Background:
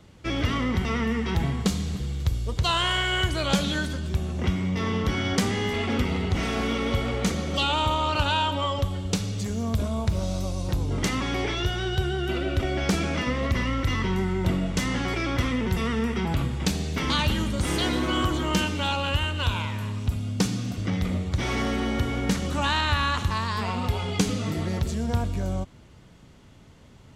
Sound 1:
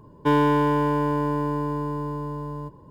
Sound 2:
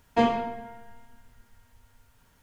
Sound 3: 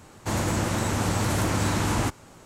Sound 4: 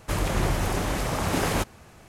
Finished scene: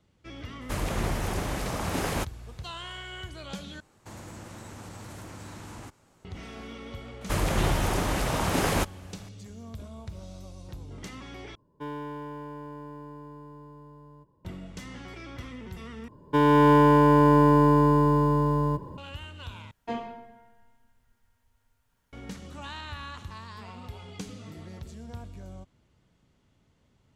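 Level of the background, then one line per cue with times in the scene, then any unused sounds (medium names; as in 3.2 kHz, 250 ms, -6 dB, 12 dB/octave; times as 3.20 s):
background -15.5 dB
0.61 s: add 4 -4.5 dB
3.80 s: replace with 3 -13 dB + compression 2:1, threshold -30 dBFS
7.21 s: add 4 -0.5 dB
11.55 s: replace with 1 -17.5 dB
16.08 s: replace with 1 -3.5 dB + level rider
19.71 s: replace with 2 -11.5 dB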